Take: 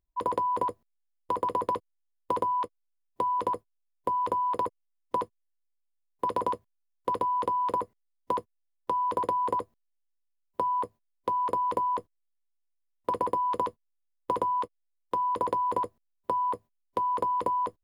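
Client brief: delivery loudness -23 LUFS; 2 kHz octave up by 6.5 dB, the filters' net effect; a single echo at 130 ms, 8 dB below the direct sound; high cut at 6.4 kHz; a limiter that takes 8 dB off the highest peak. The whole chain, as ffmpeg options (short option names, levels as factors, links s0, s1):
-af "lowpass=6400,equalizer=f=2000:t=o:g=8.5,alimiter=limit=0.106:level=0:latency=1,aecho=1:1:130:0.398,volume=1.78"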